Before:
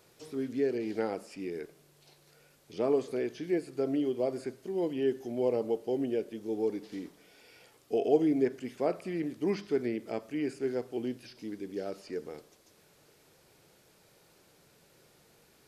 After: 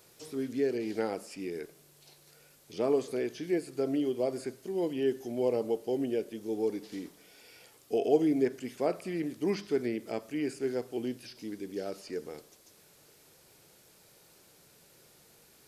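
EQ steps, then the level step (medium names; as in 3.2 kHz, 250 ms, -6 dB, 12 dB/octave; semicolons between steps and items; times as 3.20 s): treble shelf 5 kHz +8 dB; 0.0 dB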